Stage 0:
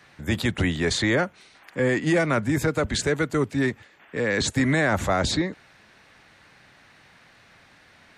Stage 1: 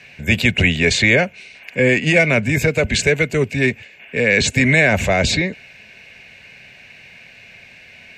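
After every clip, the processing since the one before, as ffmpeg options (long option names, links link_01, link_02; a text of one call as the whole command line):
ffmpeg -i in.wav -af "superequalizer=6b=0.447:9b=0.447:10b=0.282:12b=3.55:16b=0.447,volume=7dB" out.wav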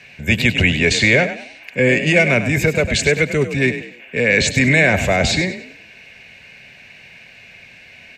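ffmpeg -i in.wav -filter_complex "[0:a]asplit=5[link_01][link_02][link_03][link_04][link_05];[link_02]adelay=99,afreqshift=34,volume=-11dB[link_06];[link_03]adelay=198,afreqshift=68,volume=-20.6dB[link_07];[link_04]adelay=297,afreqshift=102,volume=-30.3dB[link_08];[link_05]adelay=396,afreqshift=136,volume=-39.9dB[link_09];[link_01][link_06][link_07][link_08][link_09]amix=inputs=5:normalize=0" out.wav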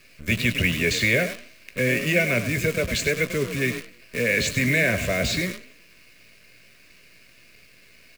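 ffmpeg -i in.wav -filter_complex "[0:a]acrusher=bits=5:dc=4:mix=0:aa=0.000001,asuperstop=centerf=830:order=4:qfactor=2.8,asplit=2[link_01][link_02];[link_02]adelay=17,volume=-11.5dB[link_03];[link_01][link_03]amix=inputs=2:normalize=0,volume=-7.5dB" out.wav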